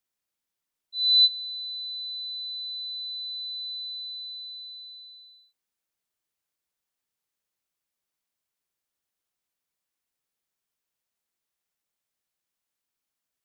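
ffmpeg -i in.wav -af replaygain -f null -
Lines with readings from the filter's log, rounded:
track_gain = +13.3 dB
track_peak = 0.170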